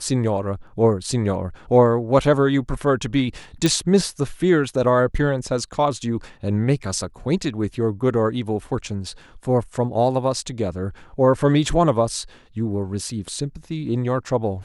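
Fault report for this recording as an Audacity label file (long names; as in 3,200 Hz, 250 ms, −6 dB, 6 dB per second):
3.660000	3.660000	click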